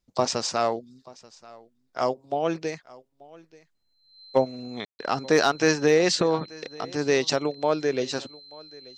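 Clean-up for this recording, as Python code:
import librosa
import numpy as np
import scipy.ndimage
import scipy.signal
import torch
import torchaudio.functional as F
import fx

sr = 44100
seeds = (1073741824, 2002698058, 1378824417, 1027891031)

y = fx.fix_declip(x, sr, threshold_db=-9.0)
y = fx.notch(y, sr, hz=4100.0, q=30.0)
y = fx.fix_ambience(y, sr, seeds[0], print_start_s=3.63, print_end_s=4.13, start_s=4.85, end_s=4.99)
y = fx.fix_echo_inverse(y, sr, delay_ms=884, level_db=-22.5)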